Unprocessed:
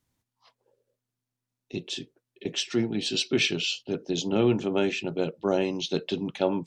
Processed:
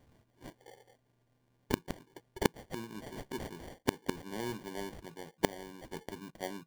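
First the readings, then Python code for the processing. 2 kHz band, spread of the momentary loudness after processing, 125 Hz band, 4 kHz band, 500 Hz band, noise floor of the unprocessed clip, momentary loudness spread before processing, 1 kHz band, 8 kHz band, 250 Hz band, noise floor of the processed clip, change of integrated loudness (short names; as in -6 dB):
-9.5 dB, 19 LU, -10.0 dB, -16.5 dB, -12.0 dB, under -85 dBFS, 11 LU, -4.0 dB, -10.0 dB, -11.5 dB, -74 dBFS, -12.0 dB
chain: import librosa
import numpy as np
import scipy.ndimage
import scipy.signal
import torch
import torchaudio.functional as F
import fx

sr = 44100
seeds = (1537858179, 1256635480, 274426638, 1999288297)

y = fx.sample_hold(x, sr, seeds[0], rate_hz=1300.0, jitter_pct=0)
y = fx.gate_flip(y, sr, shuts_db=-28.0, range_db=-34)
y = fx.rider(y, sr, range_db=4, speed_s=0.5)
y = y * 10.0 ** (14.0 / 20.0)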